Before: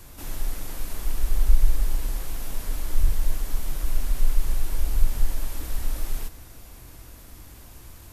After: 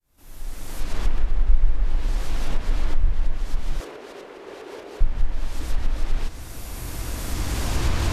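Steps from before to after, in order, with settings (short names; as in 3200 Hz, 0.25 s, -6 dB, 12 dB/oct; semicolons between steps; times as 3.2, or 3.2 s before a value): opening faded in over 1.43 s; recorder AGC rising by 11 dB/s; treble ducked by the level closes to 2500 Hz, closed at -12 dBFS; 3.8–5.01 resonant high-pass 410 Hz, resonance Q 4.3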